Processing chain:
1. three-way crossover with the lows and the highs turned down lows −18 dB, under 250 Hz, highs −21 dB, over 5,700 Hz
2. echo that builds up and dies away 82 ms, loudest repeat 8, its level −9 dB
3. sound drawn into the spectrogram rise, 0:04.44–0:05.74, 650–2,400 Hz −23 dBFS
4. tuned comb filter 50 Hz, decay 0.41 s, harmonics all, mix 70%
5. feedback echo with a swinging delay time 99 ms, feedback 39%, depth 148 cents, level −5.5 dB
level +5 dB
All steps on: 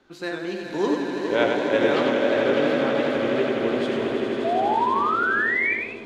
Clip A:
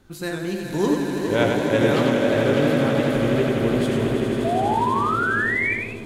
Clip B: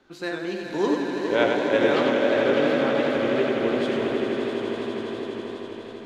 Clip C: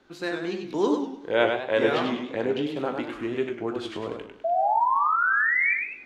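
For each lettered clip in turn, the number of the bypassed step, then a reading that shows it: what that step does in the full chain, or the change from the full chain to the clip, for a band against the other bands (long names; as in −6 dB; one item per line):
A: 1, 125 Hz band +13.0 dB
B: 3, 1 kHz band −6.5 dB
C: 2, change in momentary loudness spread +5 LU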